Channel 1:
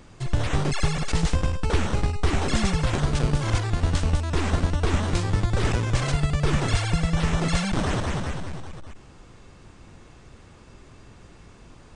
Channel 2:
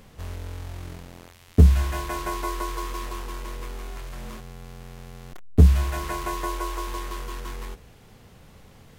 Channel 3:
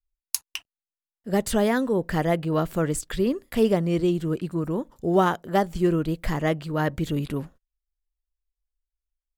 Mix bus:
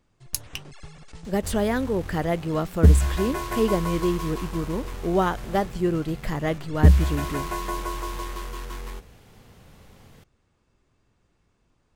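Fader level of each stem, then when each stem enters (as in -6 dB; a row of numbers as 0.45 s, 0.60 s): -20.0 dB, -0.5 dB, -2.0 dB; 0.00 s, 1.25 s, 0.00 s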